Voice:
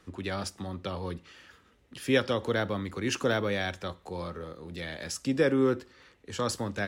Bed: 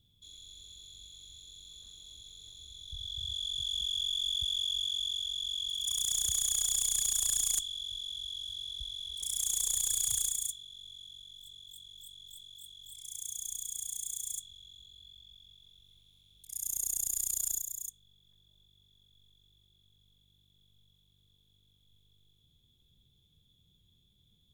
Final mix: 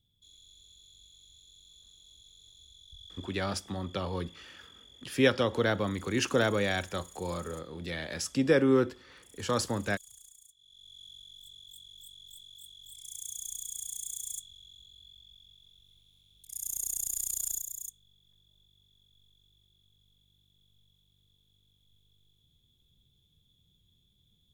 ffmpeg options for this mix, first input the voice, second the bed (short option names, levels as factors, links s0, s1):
-filter_complex "[0:a]adelay=3100,volume=1.12[s0];[1:a]volume=6.68,afade=t=out:st=2.63:d=0.98:silence=0.141254,afade=t=in:st=10.55:d=0.53:silence=0.0749894[s1];[s0][s1]amix=inputs=2:normalize=0"